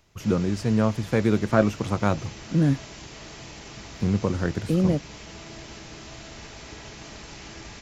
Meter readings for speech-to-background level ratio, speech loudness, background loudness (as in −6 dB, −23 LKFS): 16.5 dB, −24.5 LKFS, −41.0 LKFS